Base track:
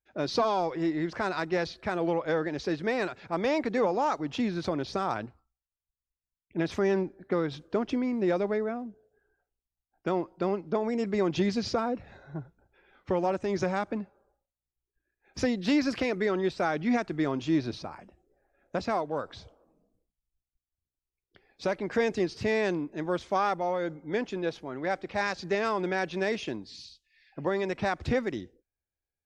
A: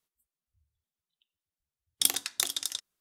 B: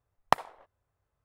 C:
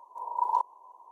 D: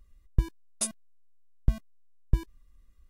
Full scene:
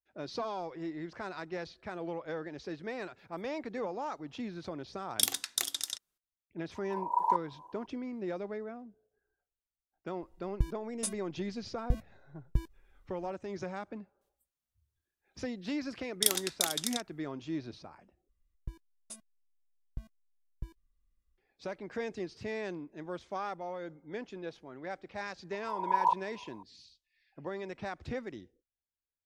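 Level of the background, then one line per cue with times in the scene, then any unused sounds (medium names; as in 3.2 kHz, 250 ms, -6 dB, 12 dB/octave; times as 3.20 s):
base track -10.5 dB
3.18 s: add A -3 dB
6.75 s: add C -1.5 dB
10.22 s: add D -5.5 dB
14.21 s: add A -2 dB
18.29 s: replace with D -17 dB
25.52 s: add C -0.5 dB
not used: B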